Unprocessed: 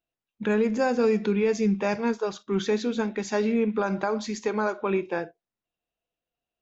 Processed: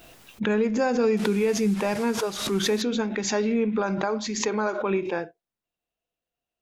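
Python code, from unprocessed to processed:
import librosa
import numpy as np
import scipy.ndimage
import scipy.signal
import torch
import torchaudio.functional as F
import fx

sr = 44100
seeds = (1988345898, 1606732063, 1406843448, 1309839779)

y = fx.delta_mod(x, sr, bps=64000, step_db=-37.0, at=(1.17, 2.82))
y = fx.pre_swell(y, sr, db_per_s=62.0)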